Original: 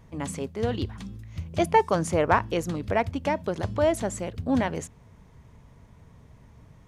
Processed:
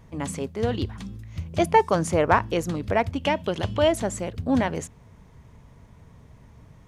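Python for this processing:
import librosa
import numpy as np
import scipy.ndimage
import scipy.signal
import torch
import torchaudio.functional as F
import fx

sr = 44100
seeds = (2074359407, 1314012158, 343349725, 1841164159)

y = fx.peak_eq(x, sr, hz=3000.0, db=12.5, octaves=0.48, at=(3.18, 3.88))
y = y * 10.0 ** (2.0 / 20.0)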